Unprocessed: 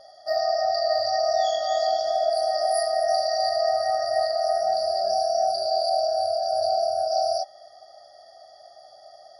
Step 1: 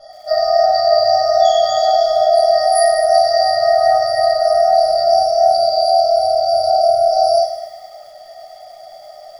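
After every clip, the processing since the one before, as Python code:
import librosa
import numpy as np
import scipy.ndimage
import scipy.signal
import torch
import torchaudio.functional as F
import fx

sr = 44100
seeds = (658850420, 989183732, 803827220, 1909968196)

y = x + 0.95 * np.pad(x, (int(1.5 * sr / 1000.0), 0))[:len(x)]
y = fx.room_shoebox(y, sr, seeds[0], volume_m3=180.0, walls='furnished', distance_m=3.2)
y = fx.echo_crushed(y, sr, ms=103, feedback_pct=55, bits=7, wet_db=-10)
y = y * 10.0 ** (-2.0 / 20.0)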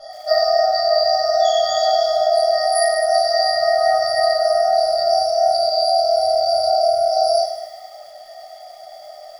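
y = fx.low_shelf(x, sr, hz=400.0, db=-8.0)
y = fx.rider(y, sr, range_db=5, speed_s=0.5)
y = fx.doubler(y, sr, ms=23.0, db=-10.5)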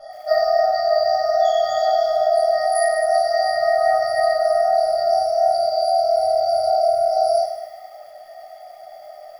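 y = fx.band_shelf(x, sr, hz=5400.0, db=-9.0, octaves=1.7)
y = y * 10.0 ** (-1.0 / 20.0)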